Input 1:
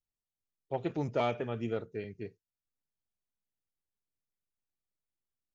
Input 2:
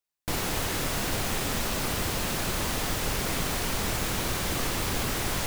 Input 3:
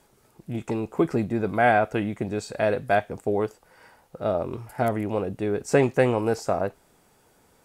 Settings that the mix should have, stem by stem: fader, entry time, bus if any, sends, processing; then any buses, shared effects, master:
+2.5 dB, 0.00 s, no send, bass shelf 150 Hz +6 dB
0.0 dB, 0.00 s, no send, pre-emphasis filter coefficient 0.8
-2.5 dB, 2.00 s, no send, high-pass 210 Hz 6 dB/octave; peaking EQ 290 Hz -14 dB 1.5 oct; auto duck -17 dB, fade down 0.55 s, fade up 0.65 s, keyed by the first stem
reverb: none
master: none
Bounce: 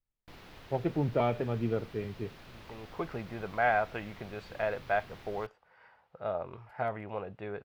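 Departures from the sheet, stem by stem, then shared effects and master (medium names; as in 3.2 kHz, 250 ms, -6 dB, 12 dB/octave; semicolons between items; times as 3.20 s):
stem 2 0.0 dB -> -7.5 dB; master: extra distance through air 340 m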